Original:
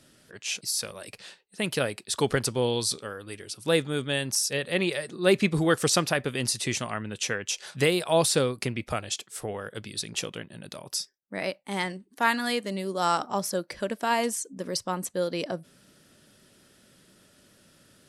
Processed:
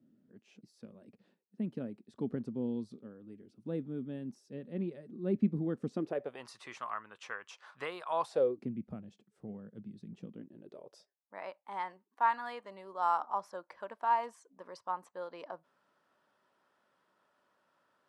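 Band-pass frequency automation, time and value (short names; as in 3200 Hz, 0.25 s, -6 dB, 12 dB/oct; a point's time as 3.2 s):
band-pass, Q 3.7
5.92 s 230 Hz
6.46 s 1100 Hz
8.2 s 1100 Hz
8.71 s 200 Hz
10.24 s 200 Hz
11.36 s 980 Hz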